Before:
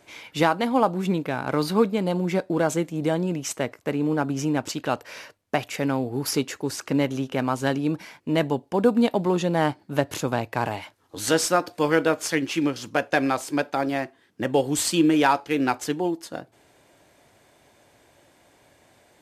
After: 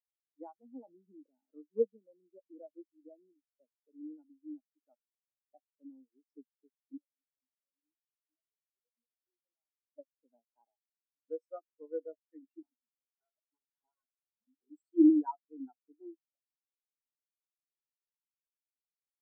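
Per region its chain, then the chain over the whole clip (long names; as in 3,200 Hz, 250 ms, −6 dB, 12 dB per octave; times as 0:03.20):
0:00.66–0:01.53: head-to-tape spacing loss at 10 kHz 44 dB + level that may fall only so fast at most 23 dB per second
0:06.97–0:09.96: spike at every zero crossing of −21 dBFS + high-pass filter 690 Hz 6 dB per octave + output level in coarse steps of 17 dB
0:12.62–0:14.70: comb filter 4.7 ms, depth 97% + wrap-around overflow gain 21.5 dB
whole clip: Butterworth high-pass 210 Hz 36 dB per octave; every bin expanded away from the loudest bin 4 to 1; level −8 dB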